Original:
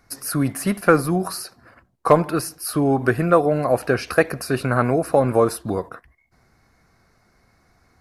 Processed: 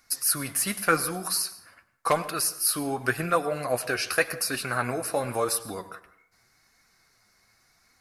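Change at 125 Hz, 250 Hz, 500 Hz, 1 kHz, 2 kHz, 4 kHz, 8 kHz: -13.0 dB, -12.5 dB, -10.5 dB, -6.5 dB, -2.5 dB, +3.5 dB, +5.0 dB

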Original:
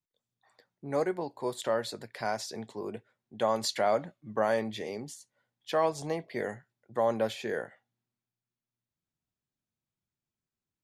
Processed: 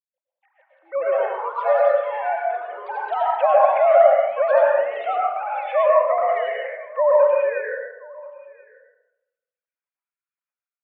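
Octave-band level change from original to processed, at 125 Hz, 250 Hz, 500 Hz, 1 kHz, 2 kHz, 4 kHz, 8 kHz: under -40 dB, under -15 dB, +14.0 dB, +14.5 dB, +10.5 dB, no reading, under -35 dB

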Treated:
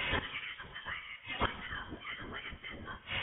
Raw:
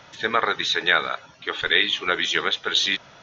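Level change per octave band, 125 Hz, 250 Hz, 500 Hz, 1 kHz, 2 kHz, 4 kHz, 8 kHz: -0.5 dB, -11.0 dB, -17.5 dB, -15.0 dB, -16.0 dB, -19.5 dB, no reading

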